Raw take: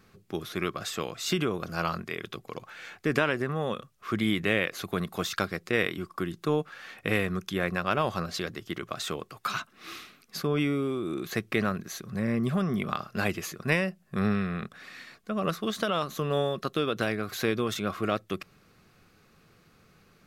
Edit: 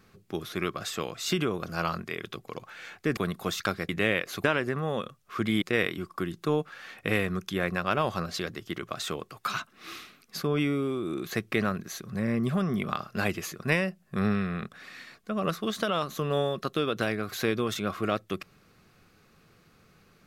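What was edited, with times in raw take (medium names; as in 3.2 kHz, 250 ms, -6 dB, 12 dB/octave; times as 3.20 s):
3.17–4.35 s: swap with 4.90–5.62 s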